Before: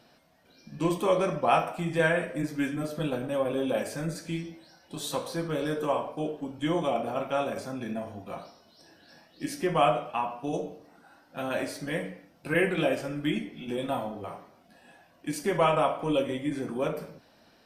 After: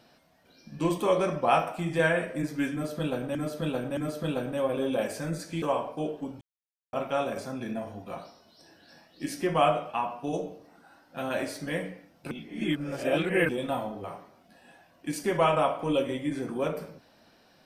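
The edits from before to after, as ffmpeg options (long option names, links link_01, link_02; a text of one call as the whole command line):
ffmpeg -i in.wav -filter_complex "[0:a]asplit=8[link_01][link_02][link_03][link_04][link_05][link_06][link_07][link_08];[link_01]atrim=end=3.352[link_09];[link_02]atrim=start=2.728:end=3.352[link_10];[link_03]atrim=start=2.728:end=4.382[link_11];[link_04]atrim=start=5.818:end=6.61,asetpts=PTS-STARTPTS,afade=type=out:start_time=0.788:duration=0.004:curve=hsin[link_12];[link_05]atrim=start=6.61:end=7.13,asetpts=PTS-STARTPTS,volume=0[link_13];[link_06]atrim=start=7.13:end=12.512,asetpts=PTS-STARTPTS,afade=type=in:duration=0.004:curve=hsin[link_14];[link_07]atrim=start=12.508:end=13.692,asetpts=PTS-STARTPTS,areverse[link_15];[link_08]atrim=start=13.688[link_16];[link_09][link_10]acrossfade=duration=0.004:curve1=hsin:curve2=hsin[link_17];[link_17][link_11]acrossfade=duration=0.004:curve1=hsin:curve2=hsin[link_18];[link_12][link_13][link_14]concat=n=3:v=0:a=1[link_19];[link_18][link_19]acrossfade=duration=0.004:curve1=hsin:curve2=hsin[link_20];[link_20][link_15]acrossfade=duration=0.004:curve1=hsin:curve2=hsin[link_21];[link_21][link_16]acrossfade=duration=0.004:curve1=hsin:curve2=hsin" out.wav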